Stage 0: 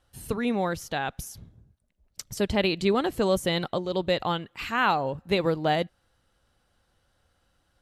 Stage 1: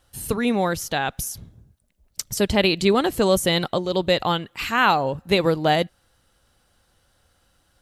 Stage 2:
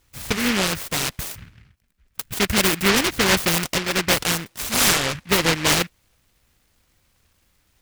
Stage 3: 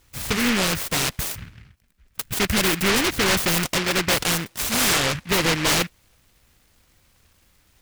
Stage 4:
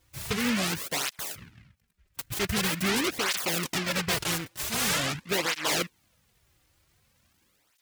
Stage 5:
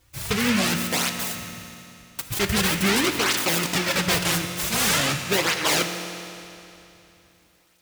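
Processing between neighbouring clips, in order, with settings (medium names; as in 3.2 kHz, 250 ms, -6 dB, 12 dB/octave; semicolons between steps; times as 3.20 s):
treble shelf 5.2 kHz +7.5 dB; trim +5 dB
delay time shaken by noise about 1.9 kHz, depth 0.41 ms
saturation -20 dBFS, distortion -8 dB; trim +4 dB
cancelling through-zero flanger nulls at 0.45 Hz, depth 4.9 ms; trim -4 dB
reverberation RT60 2.9 s, pre-delay 10 ms, DRR 6 dB; trim +5 dB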